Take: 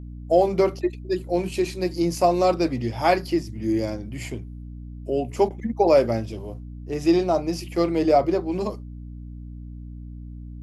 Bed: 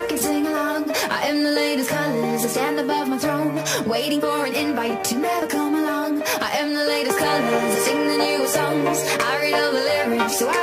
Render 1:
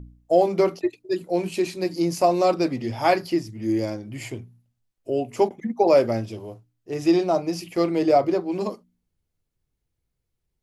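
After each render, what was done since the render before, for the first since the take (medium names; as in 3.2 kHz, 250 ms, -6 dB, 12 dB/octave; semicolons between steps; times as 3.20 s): de-hum 60 Hz, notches 5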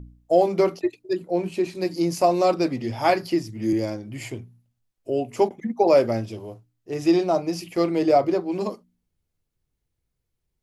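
1.13–1.75 s: treble shelf 2.6 kHz -9 dB; 3.09–3.73 s: three bands compressed up and down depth 40%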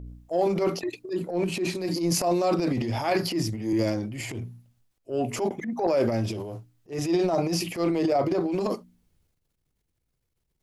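compression, threshold -19 dBFS, peak gain reduction 7.5 dB; transient shaper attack -10 dB, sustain +9 dB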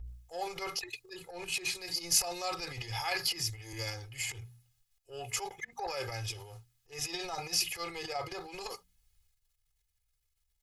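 amplifier tone stack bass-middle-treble 10-0-10; comb 2.4 ms, depth 92%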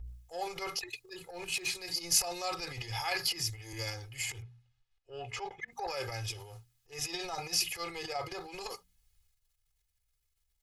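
0.97–1.78 s: block-companded coder 7-bit; 4.42–5.68 s: low-pass 3.5 kHz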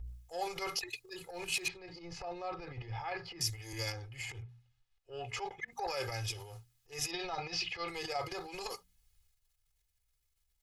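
1.68–3.41 s: tape spacing loss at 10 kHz 42 dB; 3.92–4.49 s: low-pass 1.9 kHz 6 dB/octave; 7.11–7.88 s: low-pass 4.4 kHz 24 dB/octave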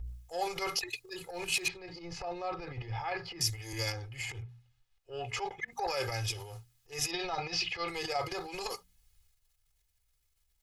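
trim +3.5 dB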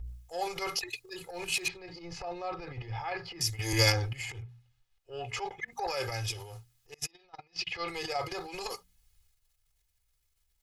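3.59–4.13 s: gain +10.5 dB; 6.94–7.67 s: gate -32 dBFS, range -28 dB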